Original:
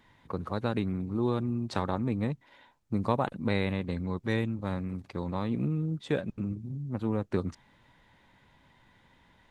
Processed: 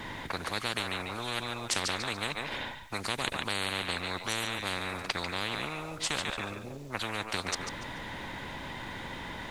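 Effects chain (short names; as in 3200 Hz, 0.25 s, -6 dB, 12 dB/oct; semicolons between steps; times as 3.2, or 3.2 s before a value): low shelf 180 Hz +7.5 dB; thinning echo 0.144 s, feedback 31%, high-pass 1200 Hz, level -9.5 dB; spectral compressor 10:1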